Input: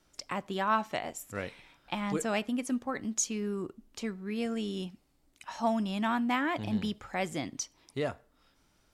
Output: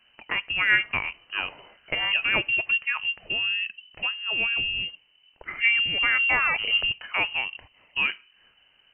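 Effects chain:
voice inversion scrambler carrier 3,000 Hz
level +7 dB

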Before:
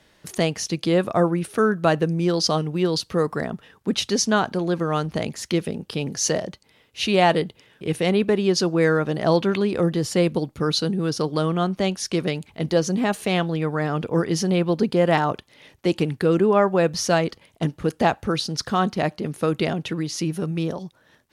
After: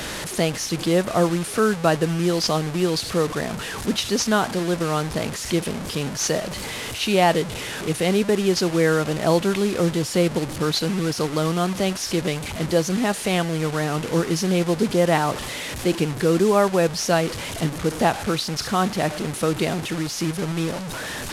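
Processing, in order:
linear delta modulator 64 kbit/s, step −24.5 dBFS

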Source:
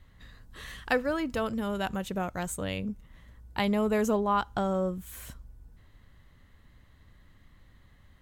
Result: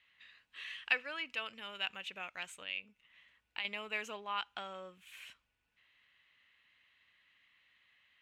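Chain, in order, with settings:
0:02.63–0:03.65: downward compressor 3 to 1, threshold −35 dBFS, peak gain reduction 9 dB
resonant band-pass 2,600 Hz, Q 4.7
level +8 dB

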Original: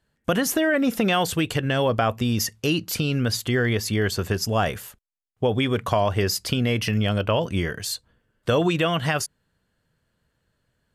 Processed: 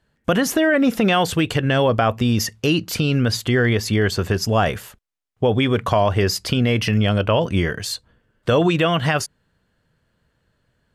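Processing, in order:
high-shelf EQ 7,200 Hz −9 dB
in parallel at −1.5 dB: brickwall limiter −15 dBFS, peak gain reduction 6.5 dB

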